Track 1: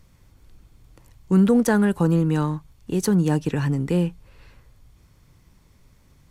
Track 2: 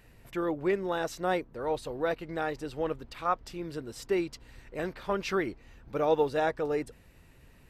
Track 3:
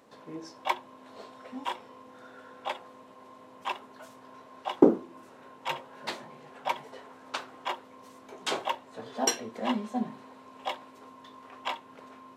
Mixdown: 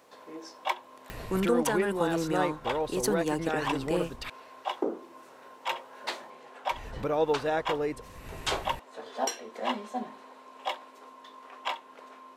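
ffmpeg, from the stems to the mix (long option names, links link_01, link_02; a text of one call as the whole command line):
ffmpeg -i stem1.wav -i stem2.wav -i stem3.wav -filter_complex "[0:a]volume=-2.5dB[link_01];[1:a]acompressor=mode=upward:threshold=-26dB:ratio=2.5,adelay=1100,volume=-1dB,asplit=3[link_02][link_03][link_04];[link_02]atrim=end=4.3,asetpts=PTS-STARTPTS,afade=type=out:start_time=4.296:duration=0.004:curve=hsin[link_05];[link_03]atrim=start=4.3:end=6.71,asetpts=PTS-STARTPTS,volume=0[link_06];[link_04]atrim=start=6.71,asetpts=PTS-STARTPTS,afade=type=in:duration=0.004:curve=hsin[link_07];[link_05][link_06][link_07]concat=n=3:v=0:a=1[link_08];[2:a]volume=1.5dB[link_09];[link_01][link_09]amix=inputs=2:normalize=0,highpass=380,alimiter=limit=-17dB:level=0:latency=1:release=237,volume=0dB[link_10];[link_08][link_10]amix=inputs=2:normalize=0" out.wav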